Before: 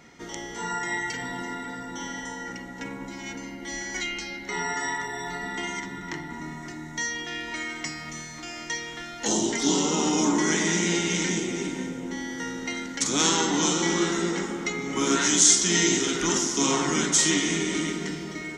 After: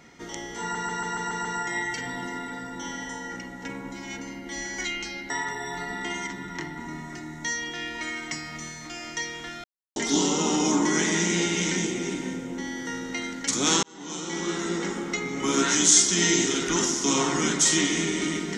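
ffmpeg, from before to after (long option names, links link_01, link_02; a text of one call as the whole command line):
ffmpeg -i in.wav -filter_complex "[0:a]asplit=11[link_01][link_02][link_03][link_04][link_05][link_06][link_07][link_08][link_09][link_10][link_11];[link_01]atrim=end=0.752[link_12];[link_02]atrim=start=0.608:end=0.752[link_13];[link_03]atrim=start=0.608:end=0.752[link_14];[link_04]atrim=start=0.608:end=0.752[link_15];[link_05]atrim=start=0.608:end=0.752[link_16];[link_06]atrim=start=0.608:end=0.752[link_17];[link_07]atrim=start=0.608:end=4.462[link_18];[link_08]atrim=start=4.828:end=9.17,asetpts=PTS-STARTPTS,afade=type=out:start_time=4.338:duration=0.004:curve=hsin[link_19];[link_09]atrim=start=9.17:end=9.49,asetpts=PTS-STARTPTS,volume=0[link_20];[link_10]atrim=start=9.49:end=13.36,asetpts=PTS-STARTPTS,afade=type=in:duration=0.004:curve=hsin,afade=type=out:start_time=3.866:duration=0.004:curve=hsin[link_21];[link_11]atrim=start=13.36,asetpts=PTS-STARTPTS,afade=type=in:duration=1.14[link_22];[link_12][link_13]acrossfade=duration=0.004:curve1=hsin:curve2=hsin[link_23];[link_23][link_14]acrossfade=duration=0.004:curve1=hsin:curve2=hsin[link_24];[link_24][link_15]acrossfade=duration=0.004:curve1=hsin:curve2=hsin[link_25];[link_25][link_16]acrossfade=duration=0.004:curve1=hsin:curve2=hsin[link_26];[link_26][link_17]acrossfade=duration=0.004:curve1=hsin:curve2=hsin[link_27];[link_27][link_18]acrossfade=duration=0.004:curve1=hsin:curve2=hsin[link_28];[link_19][link_20][link_21][link_22]concat=n=4:v=0:a=1[link_29];[link_28][link_29]acrossfade=duration=0.004:curve1=hsin:curve2=hsin" out.wav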